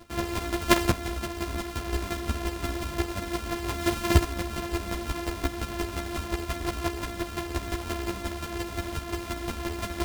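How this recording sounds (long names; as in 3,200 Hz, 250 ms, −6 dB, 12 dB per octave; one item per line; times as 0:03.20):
a buzz of ramps at a fixed pitch in blocks of 128 samples
chopped level 5.7 Hz, depth 60%, duty 15%
a shimmering, thickened sound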